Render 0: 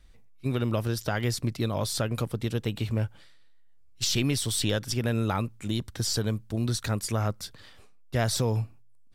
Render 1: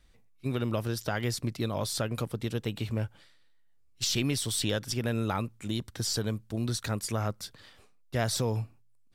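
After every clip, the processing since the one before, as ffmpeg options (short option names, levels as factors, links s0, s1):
-af "lowshelf=f=71:g=-7,volume=0.794"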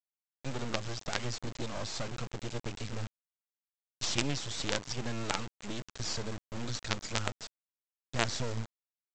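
-af "highpass=61,aresample=16000,acrusher=bits=4:dc=4:mix=0:aa=0.000001,aresample=44100"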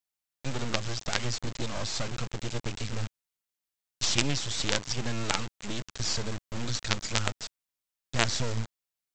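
-af "equalizer=f=490:w=0.32:g=-4,volume=2.11"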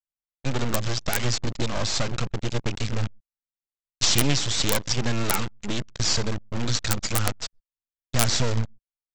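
-af "aecho=1:1:127:0.0944,anlmdn=1.58,aeval=exprs='(mod(2.99*val(0)+1,2)-1)/2.99':c=same,volume=2.24"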